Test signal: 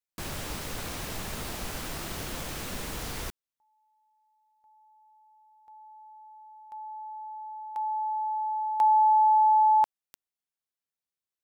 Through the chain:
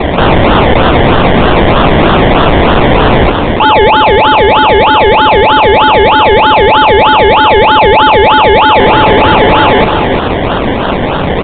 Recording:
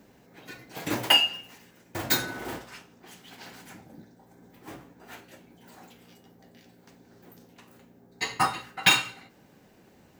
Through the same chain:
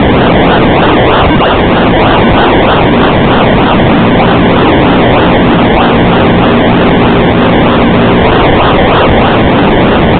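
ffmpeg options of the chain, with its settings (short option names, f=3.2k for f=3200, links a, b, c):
-filter_complex "[0:a]aeval=exprs='val(0)+0.5*0.0562*sgn(val(0))':c=same,lowshelf=f=290:g=-4,aresample=16000,aeval=exprs='(mod(10.6*val(0)+1,2)-1)/10.6':c=same,aresample=44100,acrusher=samples=27:mix=1:aa=0.000001:lfo=1:lforange=16.2:lforate=3.2,asplit=2[a][b];[b]aecho=0:1:350:0.188[c];[a][c]amix=inputs=2:normalize=0,apsyclip=31.5dB,aresample=8000,aresample=44100,volume=-3dB"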